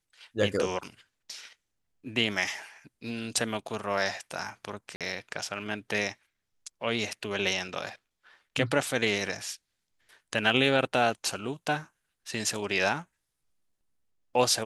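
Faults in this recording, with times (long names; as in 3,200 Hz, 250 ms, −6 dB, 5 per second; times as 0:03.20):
0:04.96–0:05.01: drop-out 47 ms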